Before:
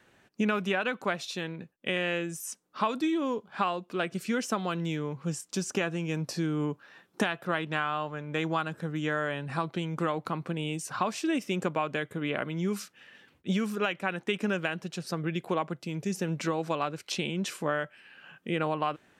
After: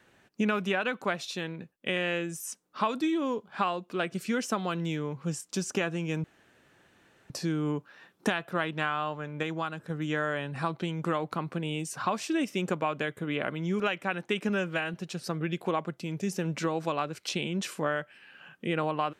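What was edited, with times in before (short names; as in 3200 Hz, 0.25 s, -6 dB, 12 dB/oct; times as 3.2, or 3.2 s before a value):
6.24 insert room tone 1.06 s
8.37–8.84 gain -3.5 dB
12.74–13.78 cut
14.47–14.77 stretch 1.5×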